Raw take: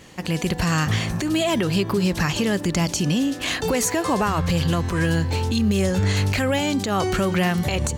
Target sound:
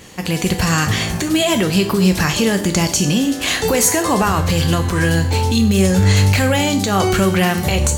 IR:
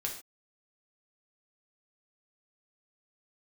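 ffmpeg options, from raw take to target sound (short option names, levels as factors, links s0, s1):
-filter_complex "[0:a]asplit=2[s0][s1];[1:a]atrim=start_sample=2205,highshelf=f=5700:g=10.5[s2];[s1][s2]afir=irnorm=-1:irlink=0,volume=0.841[s3];[s0][s3]amix=inputs=2:normalize=0"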